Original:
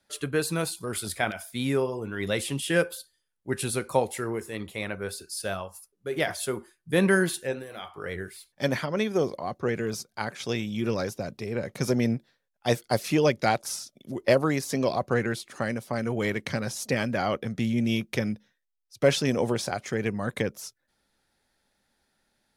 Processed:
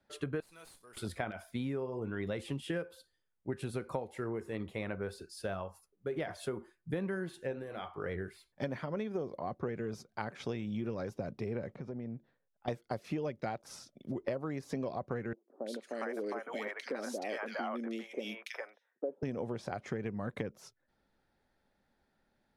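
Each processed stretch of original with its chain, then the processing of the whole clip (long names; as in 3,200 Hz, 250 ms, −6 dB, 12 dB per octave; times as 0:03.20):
0:00.40–0:00.97: first difference + tube saturation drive 40 dB, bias 0.3 + flutter between parallel walls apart 10.9 metres, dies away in 0.2 s
0:11.75–0:12.68: downward compressor 3 to 1, threshold −42 dBFS + head-to-tape spacing loss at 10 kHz 22 dB
0:15.33–0:19.23: Bessel high-pass filter 440 Hz, order 8 + high-shelf EQ 9,200 Hz +6 dB + three-band delay without the direct sound lows, highs, mids 330/410 ms, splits 610/2,100 Hz
whole clip: low-pass filter 1,200 Hz 6 dB per octave; downward compressor 10 to 1, threshold −33 dBFS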